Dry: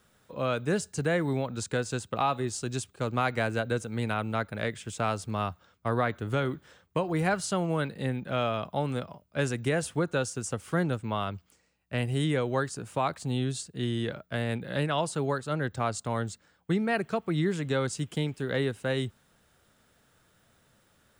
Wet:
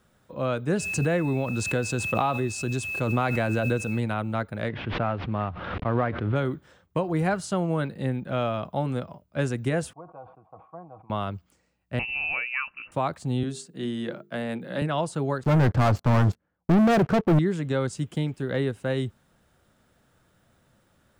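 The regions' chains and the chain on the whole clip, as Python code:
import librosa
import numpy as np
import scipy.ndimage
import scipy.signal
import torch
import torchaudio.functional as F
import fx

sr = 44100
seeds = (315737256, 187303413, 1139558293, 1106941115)

y = fx.quant_dither(x, sr, seeds[0], bits=10, dither='triangular', at=(0.78, 3.99), fade=0.02)
y = fx.dmg_tone(y, sr, hz=2600.0, level_db=-39.0, at=(0.78, 3.99), fade=0.02)
y = fx.pre_swell(y, sr, db_per_s=21.0, at=(0.78, 3.99), fade=0.02)
y = fx.chain(y, sr, fx.cvsd(bps=32000),
    fx.lowpass(hz=3000.0, slope=24),
    fx.pre_swell(db_per_s=39.0), at=(4.69, 6.36))
y = fx.chain(y, sr, fx.formant_cascade(vowel='a'),
    fx.comb(ms=6.3, depth=0.45),
    fx.sustainer(db_per_s=99.0), at=(9.93, 11.1))
y = fx.chain(y, sr, fx.air_absorb(metres=180.0),
    fx.freq_invert(carrier_hz=2800), at=(11.99, 12.92))
y = fx.chain(y, sr, fx.highpass(hz=160.0, slope=24),
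    fx.hum_notches(base_hz=50, count=9), at=(13.43, 14.82))
y = fx.chain(y, sr, fx.spacing_loss(db_at_10k=36),
    fx.notch(hz=3800.0, q=7.6),
    fx.leveller(passes=5), at=(15.43, 17.39))
y = fx.tilt_shelf(y, sr, db=3.5, hz=1300.0)
y = fx.notch(y, sr, hz=440.0, q=13.0)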